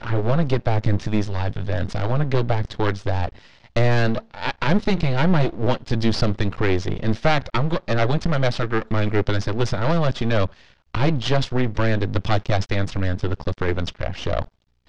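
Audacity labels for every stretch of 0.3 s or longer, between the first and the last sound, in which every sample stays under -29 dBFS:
3.290000	3.760000	silence
10.470000	10.950000	silence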